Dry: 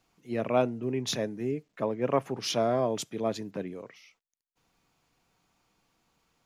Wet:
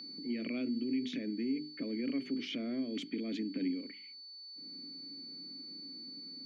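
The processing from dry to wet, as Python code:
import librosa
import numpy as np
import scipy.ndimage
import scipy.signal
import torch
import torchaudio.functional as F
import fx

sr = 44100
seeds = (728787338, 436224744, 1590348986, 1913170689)

p1 = fx.hum_notches(x, sr, base_hz=50, count=8)
p2 = fx.over_compress(p1, sr, threshold_db=-36.0, ratio=-1.0)
p3 = p1 + (p2 * librosa.db_to_amplitude(2.0))
p4 = fx.env_lowpass(p3, sr, base_hz=800.0, full_db=-21.0)
p5 = fx.vowel_filter(p4, sr, vowel='i')
p6 = p5 + 10.0 ** (-53.0 / 20.0) * np.sin(2.0 * np.pi * 4500.0 * np.arange(len(p5)) / sr)
p7 = scipy.signal.sosfilt(scipy.signal.butter(4, 140.0, 'highpass', fs=sr, output='sos'), p6)
p8 = fx.band_squash(p7, sr, depth_pct=70)
y = p8 * librosa.db_to_amplitude(1.5)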